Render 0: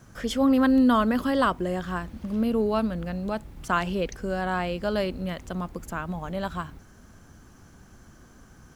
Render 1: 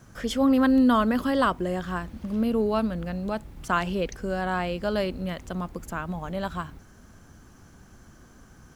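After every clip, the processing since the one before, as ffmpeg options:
ffmpeg -i in.wav -af anull out.wav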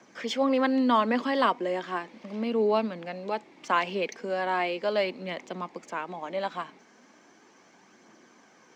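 ffmpeg -i in.wav -filter_complex "[0:a]highpass=frequency=250:width=0.5412,highpass=frequency=250:width=1.3066,equalizer=frequency=260:width_type=q:width=4:gain=-3,equalizer=frequency=910:width_type=q:width=4:gain=3,equalizer=frequency=1400:width_type=q:width=4:gain=-6,equalizer=frequency=2200:width_type=q:width=4:gain=8,lowpass=frequency=6300:width=0.5412,lowpass=frequency=6300:width=1.3066,aphaser=in_gain=1:out_gain=1:delay=4.8:decay=0.29:speed=0.37:type=triangular,acrossover=split=320|1300|4300[link_01][link_02][link_03][link_04];[link_04]acrusher=bits=5:mode=log:mix=0:aa=0.000001[link_05];[link_01][link_02][link_03][link_05]amix=inputs=4:normalize=0" out.wav

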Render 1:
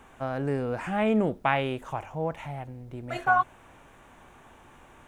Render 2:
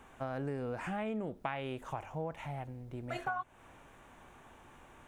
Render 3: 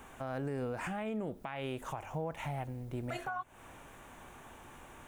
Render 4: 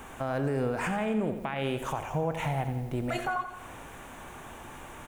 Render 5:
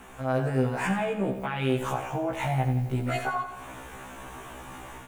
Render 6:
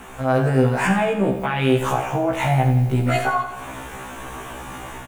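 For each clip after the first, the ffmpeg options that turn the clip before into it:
ffmpeg -i in.wav -af "acompressor=threshold=-30dB:ratio=6,volume=-4dB" out.wav
ffmpeg -i in.wav -af "highshelf=frequency=8400:gain=9.5,alimiter=level_in=9dB:limit=-24dB:level=0:latency=1:release=180,volume=-9dB,volume=4dB" out.wav
ffmpeg -i in.wav -af "aecho=1:1:87|174|261|348|435|522|609:0.299|0.17|0.097|0.0553|0.0315|0.018|0.0102,volume=7.5dB" out.wav
ffmpeg -i in.wav -af "dynaudnorm=framelen=190:gausssize=3:maxgain=5dB,afftfilt=real='re*1.73*eq(mod(b,3),0)':imag='im*1.73*eq(mod(b,3),0)':win_size=2048:overlap=0.75" out.wav
ffmpeg -i in.wav -filter_complex "[0:a]asplit=2[link_01][link_02];[link_02]adelay=49,volume=-11dB[link_03];[link_01][link_03]amix=inputs=2:normalize=0,volume=8dB" out.wav

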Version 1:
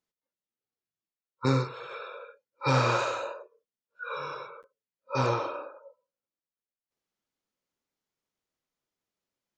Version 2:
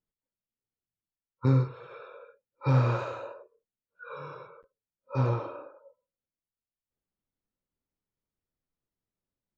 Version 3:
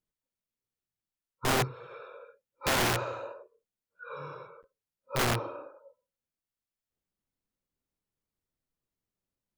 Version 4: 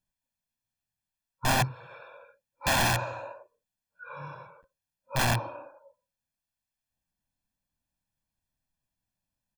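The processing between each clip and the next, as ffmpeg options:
ffmpeg -i in.wav -af "aemphasis=mode=reproduction:type=riaa,volume=-6.5dB" out.wav
ffmpeg -i in.wav -af "aeval=exprs='(mod(12.6*val(0)+1,2)-1)/12.6':channel_layout=same" out.wav
ffmpeg -i in.wav -af "aecho=1:1:1.2:0.81" out.wav

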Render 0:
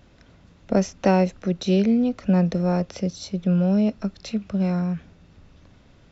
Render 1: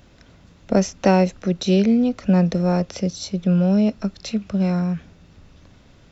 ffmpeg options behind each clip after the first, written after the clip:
ffmpeg -i in.wav -af "highshelf=frequency=5100:gain=5.5,volume=2.5dB" out.wav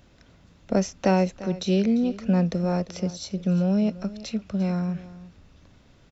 ffmpeg -i in.wav -af "aecho=1:1:346:0.141,volume=-5dB" out.wav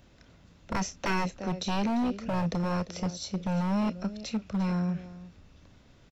ffmpeg -i in.wav -filter_complex "[0:a]acrossover=split=1100[link_01][link_02];[link_01]aeval=exprs='0.0891*(abs(mod(val(0)/0.0891+3,4)-2)-1)':channel_layout=same[link_03];[link_02]asplit=2[link_04][link_05];[link_05]adelay=30,volume=-11dB[link_06];[link_04][link_06]amix=inputs=2:normalize=0[link_07];[link_03][link_07]amix=inputs=2:normalize=0,volume=-2dB" out.wav

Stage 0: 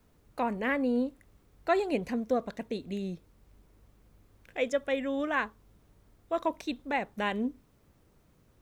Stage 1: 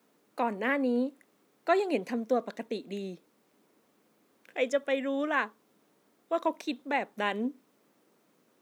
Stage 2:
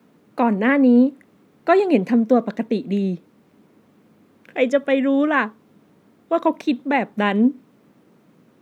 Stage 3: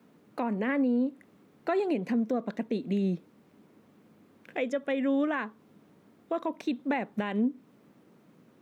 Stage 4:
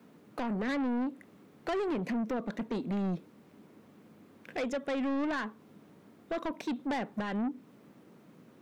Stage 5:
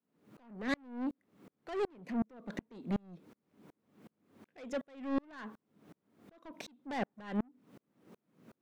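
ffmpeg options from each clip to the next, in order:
ffmpeg -i in.wav -af "highpass=frequency=220:width=0.5412,highpass=frequency=220:width=1.3066,volume=1dB" out.wav
ffmpeg -i in.wav -af "bass=frequency=250:gain=14,treble=frequency=4000:gain=-8,volume=9dB" out.wav
ffmpeg -i in.wav -af "alimiter=limit=-15.5dB:level=0:latency=1:release=230,volume=-4.5dB" out.wav
ffmpeg -i in.wav -af "asoftclip=type=tanh:threshold=-31.5dB,volume=2.5dB" out.wav
ffmpeg -i in.wav -af "aeval=exprs='val(0)*pow(10,-38*if(lt(mod(-2.7*n/s,1),2*abs(-2.7)/1000),1-mod(-2.7*n/s,1)/(2*abs(-2.7)/1000),(mod(-2.7*n/s,1)-2*abs(-2.7)/1000)/(1-2*abs(-2.7)/1000))/20)':channel_layout=same,volume=3.5dB" out.wav

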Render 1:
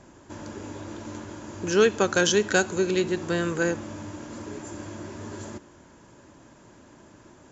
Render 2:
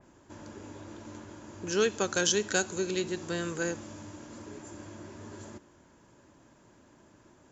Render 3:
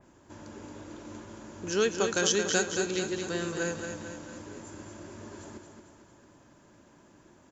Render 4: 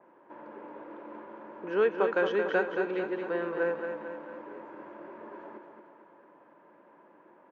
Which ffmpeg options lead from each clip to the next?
ffmpeg -i in.wav -af "adynamicequalizer=threshold=0.00794:dfrequency=3300:dqfactor=0.7:tfrequency=3300:tqfactor=0.7:attack=5:release=100:ratio=0.375:range=3.5:mode=boostabove:tftype=highshelf,volume=-7.5dB" out.wav
ffmpeg -i in.wav -af "aecho=1:1:224|448|672|896|1120|1344|1568:0.473|0.251|0.133|0.0704|0.0373|0.0198|0.0105" out.wav
ffmpeg -i in.wav -af "highpass=frequency=220:width=0.5412,highpass=frequency=220:width=1.3066,equalizer=frequency=250:width_type=q:width=4:gain=-8,equalizer=frequency=520:width_type=q:width=4:gain=6,equalizer=frequency=950:width_type=q:width=4:gain=7,lowpass=frequency=2200:width=0.5412,lowpass=frequency=2200:width=1.3066" out.wav

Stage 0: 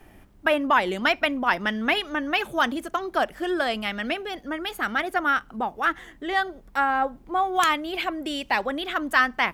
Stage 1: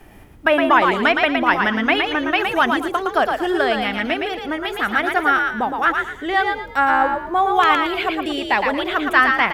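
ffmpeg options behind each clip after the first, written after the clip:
ffmpeg -i in.wav -filter_complex "[0:a]acrossover=split=3500[link_01][link_02];[link_02]acompressor=threshold=-44dB:ratio=4:attack=1:release=60[link_03];[link_01][link_03]amix=inputs=2:normalize=0,asplit=5[link_04][link_05][link_06][link_07][link_08];[link_05]adelay=114,afreqshift=49,volume=-4.5dB[link_09];[link_06]adelay=228,afreqshift=98,volume=-14.4dB[link_10];[link_07]adelay=342,afreqshift=147,volume=-24.3dB[link_11];[link_08]adelay=456,afreqshift=196,volume=-34.2dB[link_12];[link_04][link_09][link_10][link_11][link_12]amix=inputs=5:normalize=0,volume=5.5dB" out.wav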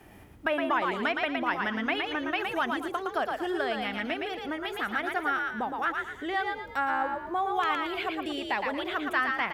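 ffmpeg -i in.wav -af "highpass=50,acompressor=threshold=-31dB:ratio=1.5,volume=-5.5dB" out.wav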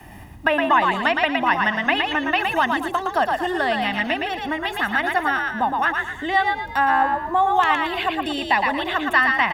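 ffmpeg -i in.wav -filter_complex "[0:a]aecho=1:1:1.1:0.6,acrossover=split=320|1300|1600[link_01][link_02][link_03][link_04];[link_01]aeval=exprs='0.0158*(abs(mod(val(0)/0.0158+3,4)-2)-1)':channel_layout=same[link_05];[link_05][link_02][link_03][link_04]amix=inputs=4:normalize=0,volume=8.5dB" out.wav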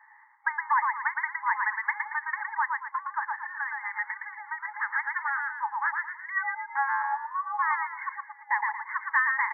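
ffmpeg -i in.wav -af "afftfilt=real='re*between(b*sr/4096,820,2200)':imag='im*between(b*sr/4096,820,2200)':win_size=4096:overlap=0.75,volume=-7dB" out.wav

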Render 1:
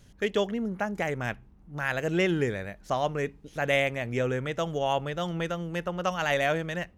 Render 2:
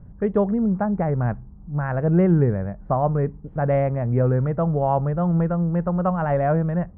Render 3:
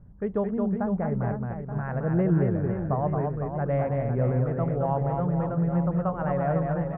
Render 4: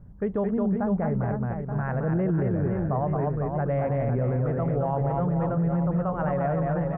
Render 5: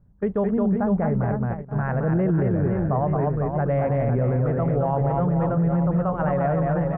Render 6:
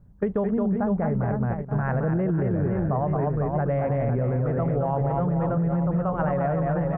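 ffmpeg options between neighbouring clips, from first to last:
ffmpeg -i in.wav -af "lowpass=frequency=1200:width=0.5412,lowpass=frequency=1200:width=1.3066,lowshelf=frequency=230:width_type=q:width=1.5:gain=6,volume=6.5dB" out.wav
ffmpeg -i in.wav -af "aecho=1:1:220|506|877.8|1361|1989:0.631|0.398|0.251|0.158|0.1,volume=-7dB" out.wav
ffmpeg -i in.wav -af "alimiter=limit=-21dB:level=0:latency=1:release=22,volume=3dB" out.wav
ffmpeg -i in.wav -af "agate=range=-13dB:threshold=-29dB:ratio=16:detection=peak,volume=3.5dB" out.wav
ffmpeg -i in.wav -af "acompressor=threshold=-25dB:ratio=6,volume=4dB" out.wav

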